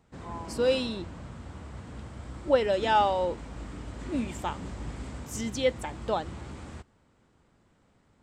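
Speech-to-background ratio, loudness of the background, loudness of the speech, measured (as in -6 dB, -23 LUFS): 13.0 dB, -41.5 LUFS, -28.5 LUFS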